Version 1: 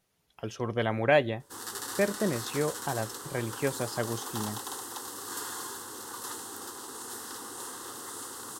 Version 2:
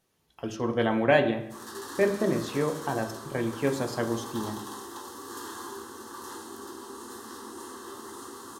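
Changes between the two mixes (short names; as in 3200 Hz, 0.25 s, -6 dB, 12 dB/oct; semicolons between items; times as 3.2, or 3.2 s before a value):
background -10.0 dB; reverb: on, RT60 0.70 s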